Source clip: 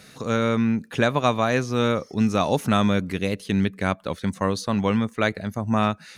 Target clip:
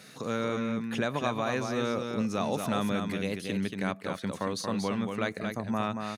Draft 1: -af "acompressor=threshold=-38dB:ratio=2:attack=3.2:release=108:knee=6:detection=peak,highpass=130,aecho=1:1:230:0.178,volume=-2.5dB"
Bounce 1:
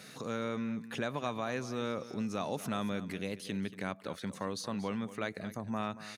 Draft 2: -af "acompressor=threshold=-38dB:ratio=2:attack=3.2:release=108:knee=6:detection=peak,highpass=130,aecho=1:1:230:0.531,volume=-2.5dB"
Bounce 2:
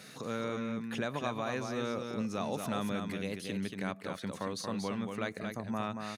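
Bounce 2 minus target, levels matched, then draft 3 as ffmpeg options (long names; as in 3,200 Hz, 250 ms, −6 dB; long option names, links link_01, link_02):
downward compressor: peak gain reduction +5 dB
-af "acompressor=threshold=-27.5dB:ratio=2:attack=3.2:release=108:knee=6:detection=peak,highpass=130,aecho=1:1:230:0.531,volume=-2.5dB"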